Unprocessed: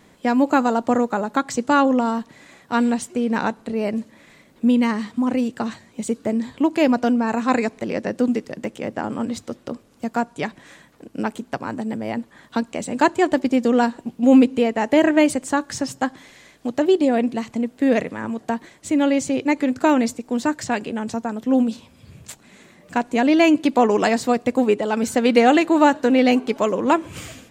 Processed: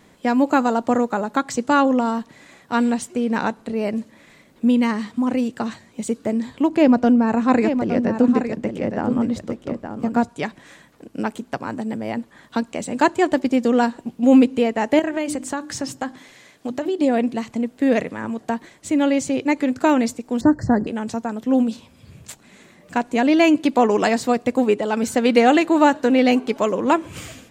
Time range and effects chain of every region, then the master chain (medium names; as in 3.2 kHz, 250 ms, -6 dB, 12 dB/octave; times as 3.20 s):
6.69–10.29 s: tilt EQ -2 dB/octave + delay 866 ms -8 dB
14.99–17.01 s: hum notches 50/100/150/200/250/300/350 Hz + compression 4:1, threshold -20 dBFS
20.41–20.87 s: Chebyshev band-stop 2–4.2 kHz, order 5 + tilt EQ -4.5 dB/octave
whole clip: none